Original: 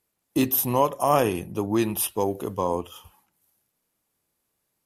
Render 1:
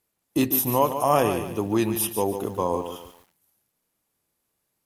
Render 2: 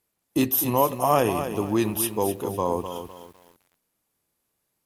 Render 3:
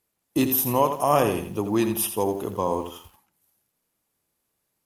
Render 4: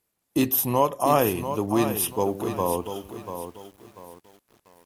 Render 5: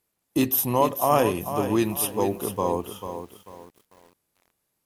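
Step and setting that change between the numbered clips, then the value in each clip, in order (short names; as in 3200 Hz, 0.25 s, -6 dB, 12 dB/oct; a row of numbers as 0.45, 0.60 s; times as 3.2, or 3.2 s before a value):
lo-fi delay, time: 145, 252, 84, 690, 442 ms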